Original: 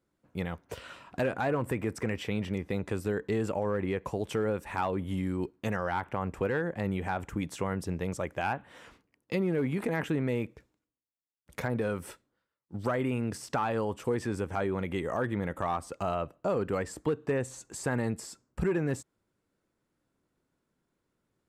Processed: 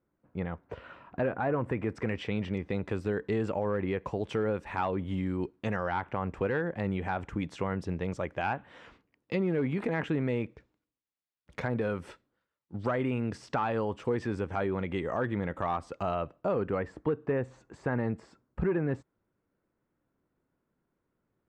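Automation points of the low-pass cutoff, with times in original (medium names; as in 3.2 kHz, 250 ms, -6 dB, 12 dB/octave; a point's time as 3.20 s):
1.49 s 1.8 kHz
2.15 s 4.2 kHz
16.20 s 4.2 kHz
16.94 s 2 kHz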